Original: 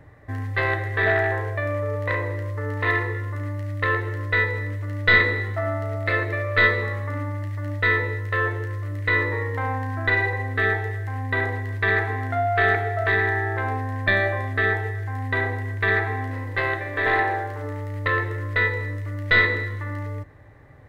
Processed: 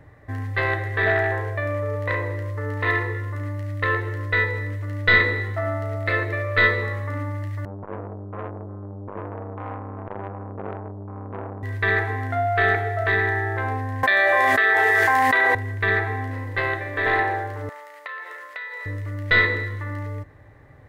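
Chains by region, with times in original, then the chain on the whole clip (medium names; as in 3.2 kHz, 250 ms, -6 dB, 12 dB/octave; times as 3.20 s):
7.65–11.63 s: steep low-pass 1.1 kHz 72 dB/octave + bass shelf 72 Hz -6.5 dB + transformer saturation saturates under 810 Hz
14.03–15.55 s: high-pass 610 Hz + level flattener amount 100%
17.69–18.86 s: high-pass 640 Hz 24 dB/octave + compression 10:1, threshold -30 dBFS
whole clip: none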